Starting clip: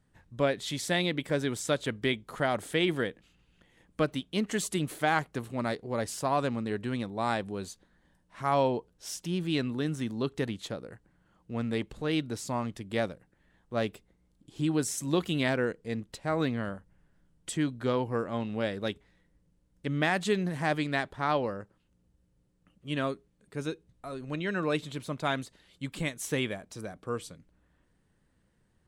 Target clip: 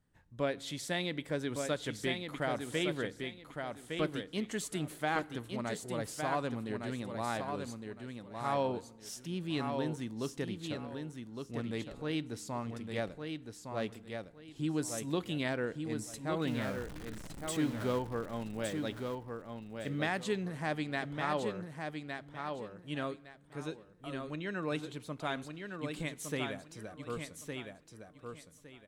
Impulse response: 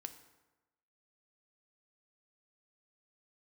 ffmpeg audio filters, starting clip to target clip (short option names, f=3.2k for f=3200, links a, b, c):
-filter_complex "[0:a]asettb=1/sr,asplit=3[a][b][c];[a]atrim=end=16.474[d];[b]atrim=start=16.47:end=17.99,asetpts=PTS-STARTPTS,afade=t=in:d=0.004:c=qsin,afade=t=out:st=1.516:d=0.004:c=qsin,aeval=exprs='val(0)+0.5*0.0211*sgn(val(0))':c=same[e];[c]atrim=start=17.986[f];[d][e]acrossfade=d=0.004:c1=hsin:c2=qsin[g];[g][f]acrossfade=d=0.004:c1=qsin:c2=hsin,aecho=1:1:1161|2322|3483:0.531|0.127|0.0306,asplit=2[h][i];[1:a]atrim=start_sample=2205[j];[i][j]afir=irnorm=-1:irlink=0,volume=-5dB[k];[h][k]amix=inputs=2:normalize=0,volume=-9dB"